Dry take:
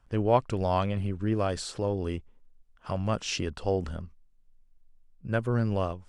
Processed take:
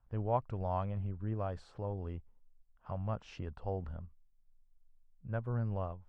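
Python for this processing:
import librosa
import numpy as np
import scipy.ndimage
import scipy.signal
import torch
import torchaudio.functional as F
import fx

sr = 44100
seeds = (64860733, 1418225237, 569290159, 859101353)

y = fx.curve_eq(x, sr, hz=(110.0, 340.0, 830.0, 8500.0), db=(0, -9, -1, -26))
y = F.gain(torch.from_numpy(y), -6.0).numpy()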